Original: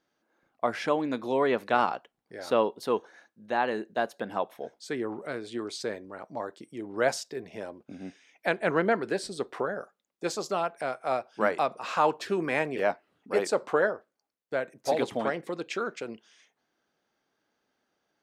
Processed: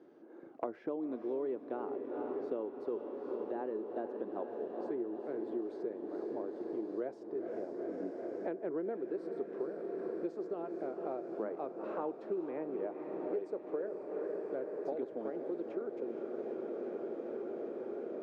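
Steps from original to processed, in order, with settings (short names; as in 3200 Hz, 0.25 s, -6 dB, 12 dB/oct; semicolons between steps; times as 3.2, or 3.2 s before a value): band-pass 360 Hz, Q 3.1; diffused feedback echo 0.467 s, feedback 76%, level -9 dB; three-band squash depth 100%; gain -3.5 dB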